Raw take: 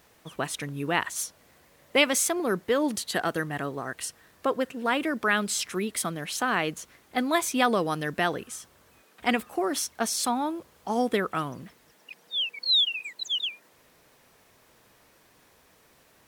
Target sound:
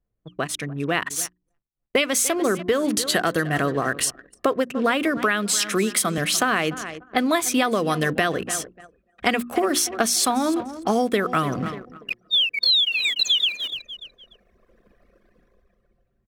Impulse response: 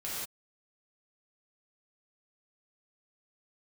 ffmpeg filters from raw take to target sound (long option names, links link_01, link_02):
-filter_complex "[0:a]asettb=1/sr,asplit=3[link_01][link_02][link_03];[link_01]atrim=end=5.174[link_04];[link_02]atrim=start=5.17:end=6.18,asetpts=PTS-STARTPTS,afade=type=in:duration=0.004:curve=qsin,afade=type=out:start_time=1.006:duration=0.004:curve=qsin,highpass=frequency=140:width=0.5412,highpass=frequency=140:width=1.3066[link_05];[link_03]atrim=start=6.176[link_06];[link_04][link_05]acrossfade=duration=0.004:curve1=hsin:curve2=qsin[link_07];[link_07][link_06]acrossfade=duration=0.004:curve1=qsin:curve2=hsin,asettb=1/sr,asplit=3[link_08][link_09][link_10];[link_08]atrim=end=6.734[link_11];[link_09]atrim=start=6.73:end=7.17,asetpts=PTS-STARTPTS,afade=type=in:duration=0.004:curve=qsin,afade=type=out:start_time=0.436:duration=0.004:curve=qsin,highshelf=frequency=4600:gain=-11[link_12];[link_10]atrim=start=7.166[link_13];[link_11][link_12]acrossfade=duration=0.004:curve1=hsin:curve2=qsin[link_14];[link_14][link_13]acrossfade=duration=0.004:curve1=qsin:curve2=hsin,aecho=1:1:293|586|879:0.119|0.0475|0.019,dynaudnorm=framelen=240:gausssize=13:maxgain=16dB,bandreject=frequency=890:width=5.6,asettb=1/sr,asplit=3[link_15][link_16][link_17];[link_15]atrim=end=1.154[link_18];[link_16]atrim=start=1.15:end=2,asetpts=PTS-STARTPTS,afade=type=in:duration=0.004:curve=qsin,afade=type=out:start_time=0.846:duration=0.004:curve=qsin,aeval=exprs='sgn(val(0))*max(abs(val(0))-0.00596,0)':channel_layout=same[link_19];[link_17]atrim=start=1.996[link_20];[link_18][link_19]acrossfade=duration=0.004:curve1=hsin:curve2=qsin[link_21];[link_21][link_20]acrossfade=duration=0.004:curve1=qsin:curve2=hsin,anlmdn=1.58,bandreject=frequency=60:width_type=h:width=6,bandreject=frequency=120:width_type=h:width=6,bandreject=frequency=180:width_type=h:width=6,bandreject=frequency=240:width_type=h:width=6,bandreject=frequency=300:width_type=h:width=6,bandreject=frequency=360:width_type=h:width=6,acompressor=threshold=-22dB:ratio=8,volume=4.5dB"